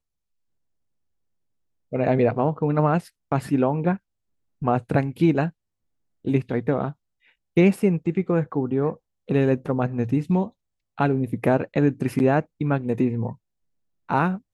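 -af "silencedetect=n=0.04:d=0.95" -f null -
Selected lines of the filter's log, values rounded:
silence_start: 0.00
silence_end: 1.93 | silence_duration: 1.93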